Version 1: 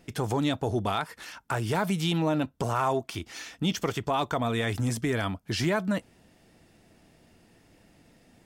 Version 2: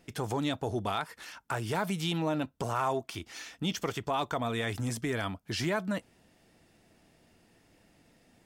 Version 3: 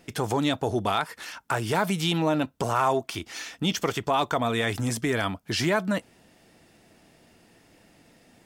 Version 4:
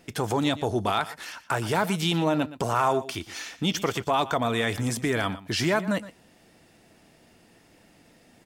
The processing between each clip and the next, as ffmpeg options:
ffmpeg -i in.wav -af "lowshelf=frequency=360:gain=-3,volume=-3dB" out.wav
ffmpeg -i in.wav -af "lowshelf=frequency=100:gain=-6,volume=7dB" out.wav
ffmpeg -i in.wav -af "aecho=1:1:118:0.158" out.wav

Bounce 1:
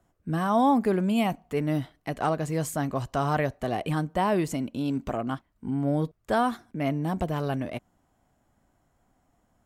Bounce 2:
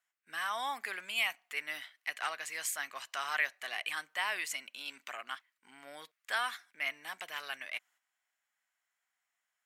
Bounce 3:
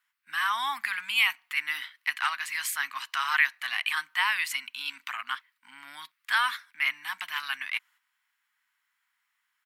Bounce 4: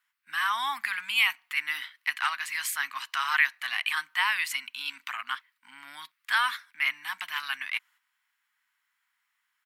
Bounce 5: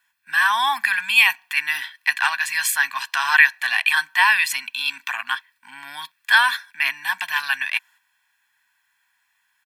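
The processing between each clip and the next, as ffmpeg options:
ffmpeg -i in.wav -af "agate=range=-8dB:threshold=-57dB:ratio=16:detection=peak,highpass=frequency=2000:width_type=q:width=1.9" out.wav
ffmpeg -i in.wav -af "firequalizer=gain_entry='entry(280,0);entry(430,-29);entry(930,9);entry(4400,8);entry(6800,0);entry(11000,7)':delay=0.05:min_phase=1" out.wav
ffmpeg -i in.wav -af anull out.wav
ffmpeg -i in.wav -af "aecho=1:1:1.2:0.8,volume=7.5dB" out.wav

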